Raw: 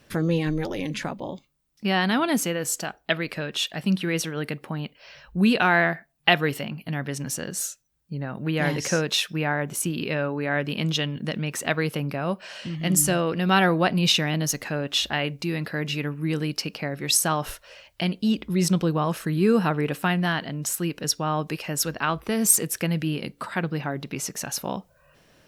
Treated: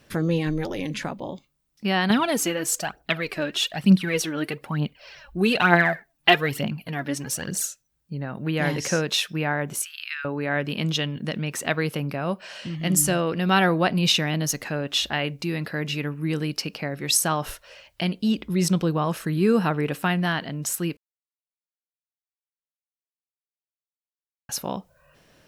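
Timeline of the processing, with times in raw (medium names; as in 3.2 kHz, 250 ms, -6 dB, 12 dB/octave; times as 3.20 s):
2.10–7.65 s: phaser 1.1 Hz, delay 3.7 ms, feedback 60%
9.82–10.25 s: steep high-pass 1.3 kHz 48 dB/octave
20.97–24.49 s: mute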